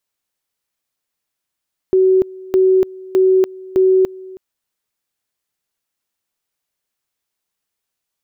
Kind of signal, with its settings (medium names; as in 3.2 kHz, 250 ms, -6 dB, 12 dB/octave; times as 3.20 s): two-level tone 376 Hz -8.5 dBFS, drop 22 dB, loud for 0.29 s, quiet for 0.32 s, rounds 4